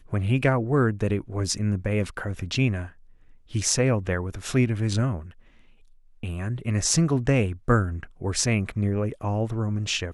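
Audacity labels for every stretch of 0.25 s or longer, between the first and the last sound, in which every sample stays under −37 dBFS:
2.890000	3.520000	silence
5.300000	6.230000	silence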